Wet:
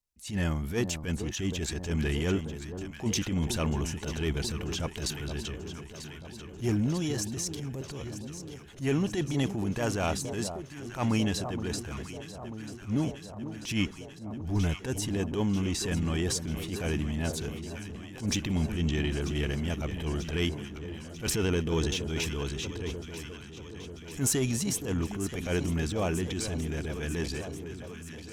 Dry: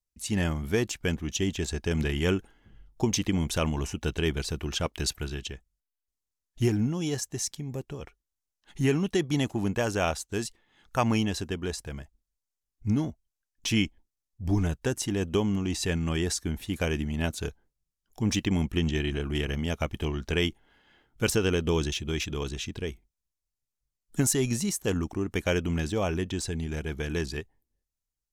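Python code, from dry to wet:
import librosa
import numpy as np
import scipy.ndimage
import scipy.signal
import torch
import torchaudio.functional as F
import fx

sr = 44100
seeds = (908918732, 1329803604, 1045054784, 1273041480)

y = fx.diode_clip(x, sr, knee_db=-12.0)
y = fx.echo_alternate(y, sr, ms=470, hz=1100.0, feedback_pct=84, wet_db=-11.5)
y = fx.transient(y, sr, attack_db=-12, sustain_db=2)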